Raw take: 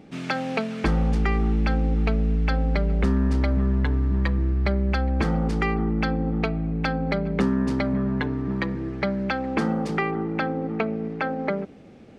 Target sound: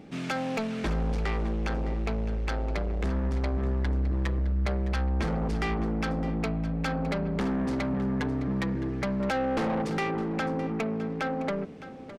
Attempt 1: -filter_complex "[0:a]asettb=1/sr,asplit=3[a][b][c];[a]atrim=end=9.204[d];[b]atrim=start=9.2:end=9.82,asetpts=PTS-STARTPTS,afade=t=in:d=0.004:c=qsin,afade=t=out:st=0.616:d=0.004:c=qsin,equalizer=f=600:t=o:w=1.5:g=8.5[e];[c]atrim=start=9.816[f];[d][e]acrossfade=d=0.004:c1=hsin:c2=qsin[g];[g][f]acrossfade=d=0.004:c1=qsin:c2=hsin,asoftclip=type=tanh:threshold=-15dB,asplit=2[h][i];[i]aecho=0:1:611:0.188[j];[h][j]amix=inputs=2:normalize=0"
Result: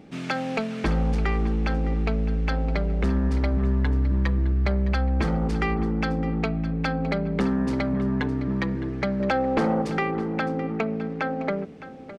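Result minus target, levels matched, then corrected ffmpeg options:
soft clip: distortion -11 dB
-filter_complex "[0:a]asettb=1/sr,asplit=3[a][b][c];[a]atrim=end=9.204[d];[b]atrim=start=9.2:end=9.82,asetpts=PTS-STARTPTS,afade=t=in:d=0.004:c=qsin,afade=t=out:st=0.616:d=0.004:c=qsin,equalizer=f=600:t=o:w=1.5:g=8.5[e];[c]atrim=start=9.816[f];[d][e]acrossfade=d=0.004:c1=hsin:c2=qsin[g];[g][f]acrossfade=d=0.004:c1=qsin:c2=hsin,asoftclip=type=tanh:threshold=-25dB,asplit=2[h][i];[i]aecho=0:1:611:0.188[j];[h][j]amix=inputs=2:normalize=0"

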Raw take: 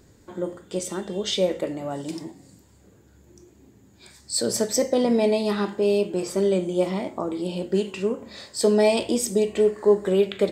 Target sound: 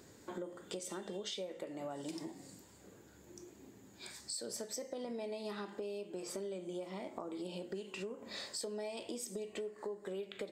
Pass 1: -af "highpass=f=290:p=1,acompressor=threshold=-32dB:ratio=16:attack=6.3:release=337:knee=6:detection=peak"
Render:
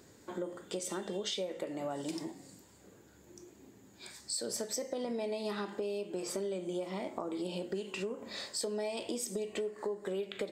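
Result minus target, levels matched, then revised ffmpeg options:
compressor: peak gain reduction -5.5 dB
-af "highpass=f=290:p=1,acompressor=threshold=-38dB:ratio=16:attack=6.3:release=337:knee=6:detection=peak"

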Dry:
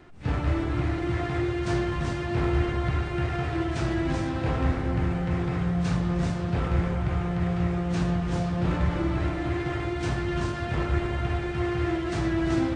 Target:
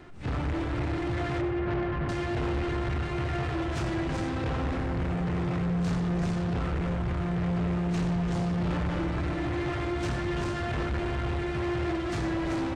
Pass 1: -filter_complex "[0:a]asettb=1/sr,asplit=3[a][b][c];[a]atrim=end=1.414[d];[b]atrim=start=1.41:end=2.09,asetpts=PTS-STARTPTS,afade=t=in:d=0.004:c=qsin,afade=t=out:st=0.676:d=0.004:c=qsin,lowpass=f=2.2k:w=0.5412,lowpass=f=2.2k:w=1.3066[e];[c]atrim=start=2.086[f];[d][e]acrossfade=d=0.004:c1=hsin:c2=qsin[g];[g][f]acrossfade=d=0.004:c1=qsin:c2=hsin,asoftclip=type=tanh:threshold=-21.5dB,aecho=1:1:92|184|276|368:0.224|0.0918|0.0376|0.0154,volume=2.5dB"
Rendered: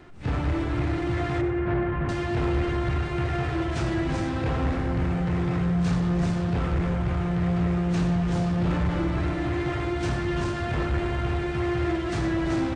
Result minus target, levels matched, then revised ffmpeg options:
soft clip: distortion -7 dB
-filter_complex "[0:a]asettb=1/sr,asplit=3[a][b][c];[a]atrim=end=1.414[d];[b]atrim=start=1.41:end=2.09,asetpts=PTS-STARTPTS,afade=t=in:d=0.004:c=qsin,afade=t=out:st=0.676:d=0.004:c=qsin,lowpass=f=2.2k:w=0.5412,lowpass=f=2.2k:w=1.3066[e];[c]atrim=start=2.086[f];[d][e]acrossfade=d=0.004:c1=hsin:c2=qsin[g];[g][f]acrossfade=d=0.004:c1=qsin:c2=hsin,asoftclip=type=tanh:threshold=-29dB,aecho=1:1:92|184|276|368:0.224|0.0918|0.0376|0.0154,volume=2.5dB"

